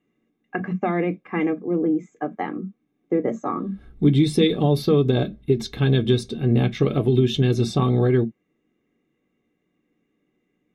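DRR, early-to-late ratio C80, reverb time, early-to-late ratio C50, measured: 6.5 dB, 60.0 dB, non-exponential decay, 26.5 dB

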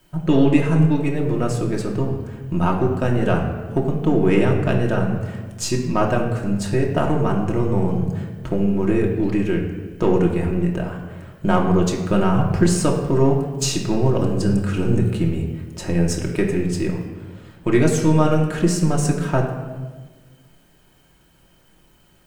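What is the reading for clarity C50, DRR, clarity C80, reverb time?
5.5 dB, −1.5 dB, 7.5 dB, 1.4 s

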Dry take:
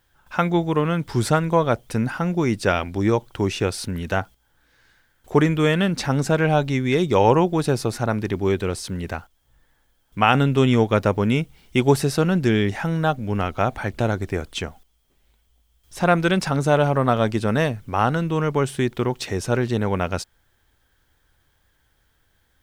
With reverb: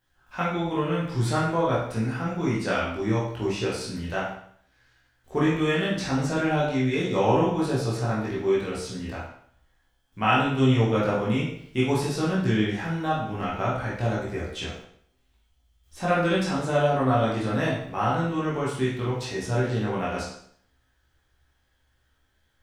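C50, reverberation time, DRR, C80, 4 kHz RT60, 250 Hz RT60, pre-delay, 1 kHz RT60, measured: 2.0 dB, 0.60 s, −7.5 dB, 6.0 dB, 0.60 s, 0.65 s, 15 ms, 0.60 s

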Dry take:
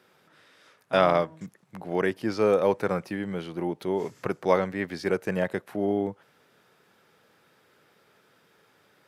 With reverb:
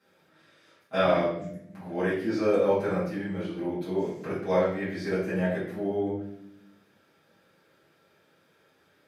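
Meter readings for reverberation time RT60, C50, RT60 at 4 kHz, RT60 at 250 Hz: 0.70 s, 2.5 dB, 0.60 s, 1.2 s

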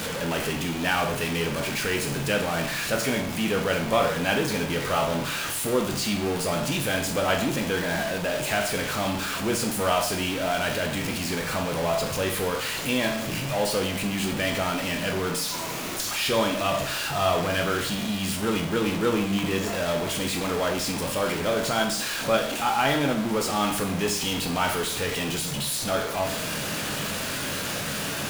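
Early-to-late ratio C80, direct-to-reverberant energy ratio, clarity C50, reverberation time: 11.0 dB, 2.5 dB, 7.5 dB, 0.65 s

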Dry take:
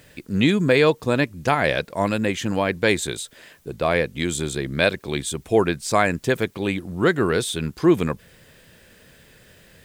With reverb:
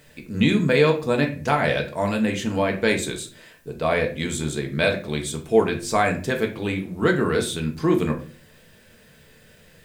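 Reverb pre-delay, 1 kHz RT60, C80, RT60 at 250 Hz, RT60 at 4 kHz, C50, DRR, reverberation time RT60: 4 ms, 0.35 s, 16.5 dB, 0.55 s, 0.30 s, 11.0 dB, 2.0 dB, 0.45 s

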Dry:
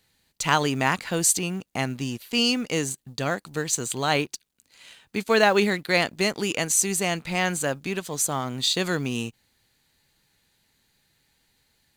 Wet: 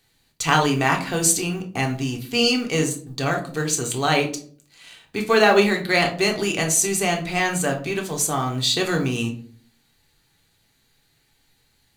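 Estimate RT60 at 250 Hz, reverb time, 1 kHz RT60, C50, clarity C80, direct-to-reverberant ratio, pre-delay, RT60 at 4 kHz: 0.70 s, 0.50 s, 0.40 s, 11.0 dB, 16.0 dB, 1.0 dB, 3 ms, 0.30 s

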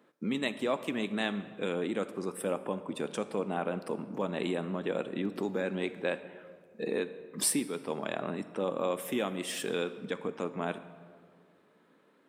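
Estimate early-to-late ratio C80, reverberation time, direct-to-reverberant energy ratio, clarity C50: 14.5 dB, 2.0 s, 11.5 dB, 13.0 dB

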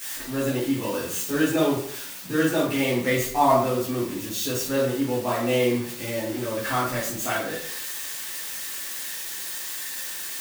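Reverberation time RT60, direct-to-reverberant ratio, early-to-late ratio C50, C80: 0.65 s, −10.5 dB, 3.5 dB, 8.0 dB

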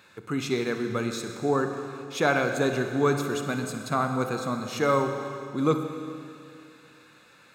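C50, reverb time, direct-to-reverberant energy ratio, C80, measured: 6.0 dB, 2.5 s, 5.5 dB, 7.0 dB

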